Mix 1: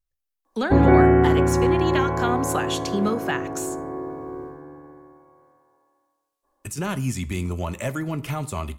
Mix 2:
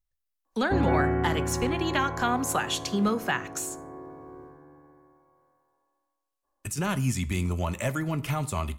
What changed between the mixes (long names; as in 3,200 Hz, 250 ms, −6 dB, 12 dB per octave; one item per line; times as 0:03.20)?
background −8.5 dB
master: add parametric band 380 Hz −3.5 dB 1.2 octaves